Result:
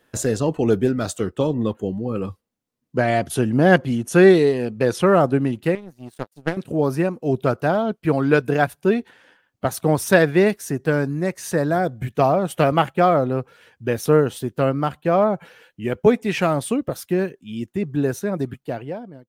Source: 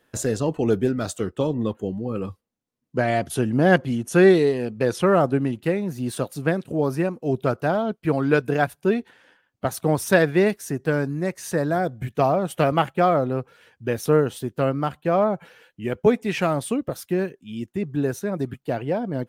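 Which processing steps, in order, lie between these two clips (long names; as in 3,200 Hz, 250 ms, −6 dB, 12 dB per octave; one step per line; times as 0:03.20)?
fade-out on the ending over 0.94 s
0:05.75–0:06.57: power curve on the samples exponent 2
level +2.5 dB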